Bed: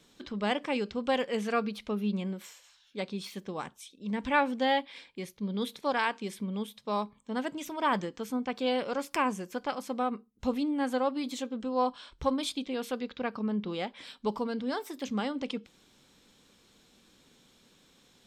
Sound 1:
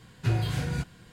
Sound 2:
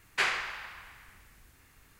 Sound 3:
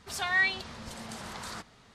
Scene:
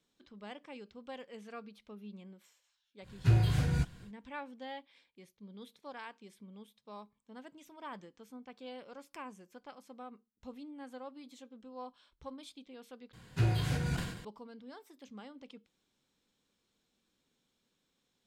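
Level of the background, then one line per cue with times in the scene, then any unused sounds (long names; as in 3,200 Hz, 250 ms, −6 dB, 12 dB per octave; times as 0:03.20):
bed −17.5 dB
0:03.01: mix in 1 −4 dB, fades 0.10 s + low-shelf EQ 100 Hz +10.5 dB
0:13.13: overwrite with 1 −3.5 dB + level that may fall only so fast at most 66 dB per second
not used: 2, 3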